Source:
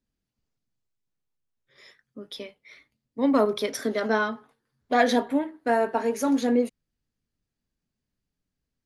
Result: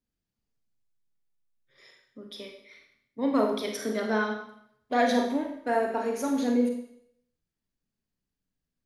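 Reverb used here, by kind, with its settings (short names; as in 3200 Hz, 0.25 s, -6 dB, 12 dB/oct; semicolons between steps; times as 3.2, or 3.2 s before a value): Schroeder reverb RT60 0.68 s, combs from 33 ms, DRR 2.5 dB; gain -5 dB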